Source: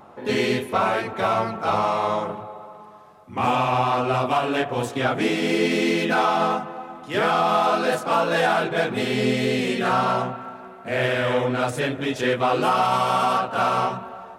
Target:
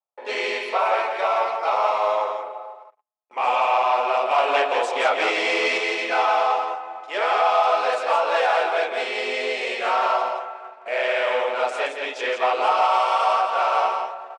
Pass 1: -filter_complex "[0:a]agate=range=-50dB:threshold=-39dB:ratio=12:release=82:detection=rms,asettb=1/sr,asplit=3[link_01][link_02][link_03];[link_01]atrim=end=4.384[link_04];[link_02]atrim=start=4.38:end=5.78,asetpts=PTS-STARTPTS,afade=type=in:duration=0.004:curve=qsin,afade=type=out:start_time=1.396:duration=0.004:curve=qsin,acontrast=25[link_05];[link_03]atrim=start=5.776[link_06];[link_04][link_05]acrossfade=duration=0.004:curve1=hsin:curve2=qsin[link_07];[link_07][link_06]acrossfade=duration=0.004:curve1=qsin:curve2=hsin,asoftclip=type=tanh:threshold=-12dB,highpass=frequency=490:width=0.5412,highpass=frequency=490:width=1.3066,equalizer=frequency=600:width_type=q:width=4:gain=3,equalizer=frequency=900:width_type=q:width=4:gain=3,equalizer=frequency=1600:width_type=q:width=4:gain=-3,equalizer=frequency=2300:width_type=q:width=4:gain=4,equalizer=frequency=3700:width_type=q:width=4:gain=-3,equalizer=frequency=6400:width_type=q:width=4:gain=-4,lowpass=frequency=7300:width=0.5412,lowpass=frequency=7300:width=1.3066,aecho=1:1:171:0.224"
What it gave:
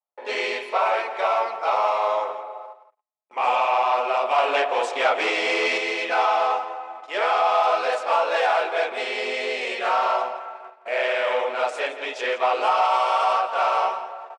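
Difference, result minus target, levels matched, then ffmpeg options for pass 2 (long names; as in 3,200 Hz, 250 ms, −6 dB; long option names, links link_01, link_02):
echo-to-direct −8 dB
-filter_complex "[0:a]agate=range=-50dB:threshold=-39dB:ratio=12:release=82:detection=rms,asettb=1/sr,asplit=3[link_01][link_02][link_03];[link_01]atrim=end=4.384[link_04];[link_02]atrim=start=4.38:end=5.78,asetpts=PTS-STARTPTS,afade=type=in:duration=0.004:curve=qsin,afade=type=out:start_time=1.396:duration=0.004:curve=qsin,acontrast=25[link_05];[link_03]atrim=start=5.776[link_06];[link_04][link_05]acrossfade=duration=0.004:curve1=hsin:curve2=qsin[link_07];[link_07][link_06]acrossfade=duration=0.004:curve1=qsin:curve2=hsin,asoftclip=type=tanh:threshold=-12dB,highpass=frequency=490:width=0.5412,highpass=frequency=490:width=1.3066,equalizer=frequency=600:width_type=q:width=4:gain=3,equalizer=frequency=900:width_type=q:width=4:gain=3,equalizer=frequency=1600:width_type=q:width=4:gain=-3,equalizer=frequency=2300:width_type=q:width=4:gain=4,equalizer=frequency=3700:width_type=q:width=4:gain=-3,equalizer=frequency=6400:width_type=q:width=4:gain=-4,lowpass=frequency=7300:width=0.5412,lowpass=frequency=7300:width=1.3066,aecho=1:1:171:0.562"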